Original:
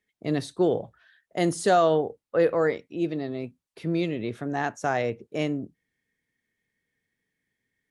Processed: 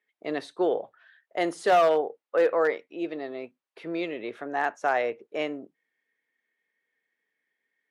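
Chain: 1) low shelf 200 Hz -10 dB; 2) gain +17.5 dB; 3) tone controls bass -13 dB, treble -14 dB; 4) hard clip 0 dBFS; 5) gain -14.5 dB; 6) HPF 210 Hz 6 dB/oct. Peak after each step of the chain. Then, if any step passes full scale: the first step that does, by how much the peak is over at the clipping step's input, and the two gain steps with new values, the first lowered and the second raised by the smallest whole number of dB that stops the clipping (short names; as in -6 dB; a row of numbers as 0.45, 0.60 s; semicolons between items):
-11.0, +6.5, +5.0, 0.0, -14.5, -12.0 dBFS; step 2, 5.0 dB; step 2 +12.5 dB, step 5 -9.5 dB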